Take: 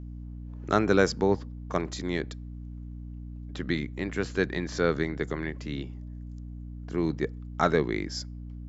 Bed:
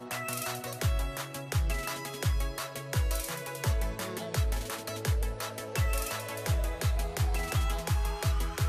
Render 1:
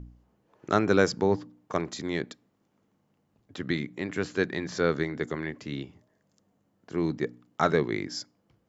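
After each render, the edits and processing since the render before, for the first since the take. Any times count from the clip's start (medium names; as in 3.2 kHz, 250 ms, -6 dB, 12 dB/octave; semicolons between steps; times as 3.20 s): de-hum 60 Hz, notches 5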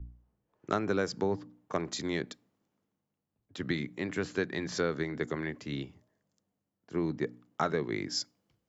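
compression 5:1, threshold -27 dBFS, peak gain reduction 10.5 dB; three bands expanded up and down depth 40%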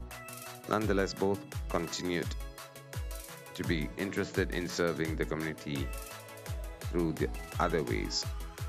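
add bed -10 dB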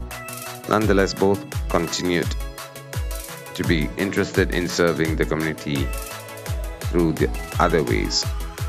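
trim +12 dB; peak limiter -2 dBFS, peak gain reduction 1 dB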